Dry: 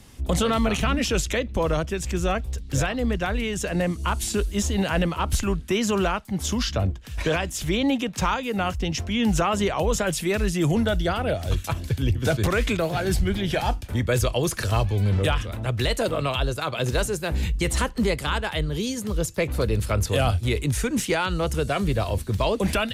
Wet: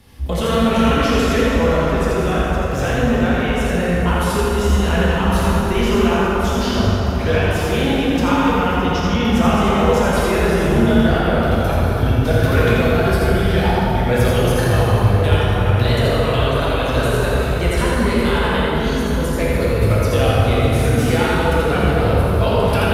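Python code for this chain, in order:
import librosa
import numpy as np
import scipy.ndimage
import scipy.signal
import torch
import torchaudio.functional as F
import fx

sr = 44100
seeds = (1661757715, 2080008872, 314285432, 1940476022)

p1 = fx.peak_eq(x, sr, hz=7400.0, db=-10.0, octaves=0.7)
p2 = p1 + fx.echo_single(p1, sr, ms=83, db=-3.5, dry=0)
p3 = fx.rev_plate(p2, sr, seeds[0], rt60_s=4.8, hf_ratio=0.45, predelay_ms=0, drr_db=-6.5)
y = p3 * librosa.db_to_amplitude(-1.0)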